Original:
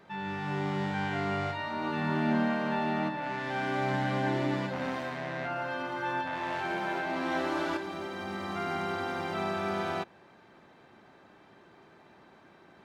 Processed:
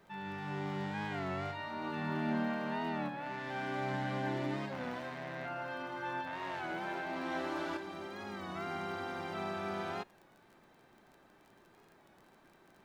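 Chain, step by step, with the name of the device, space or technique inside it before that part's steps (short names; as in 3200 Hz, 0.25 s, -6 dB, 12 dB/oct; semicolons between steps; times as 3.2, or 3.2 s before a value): warped LP (record warp 33 1/3 rpm, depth 100 cents; crackle 25/s -44 dBFS; pink noise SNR 38 dB); gain -6.5 dB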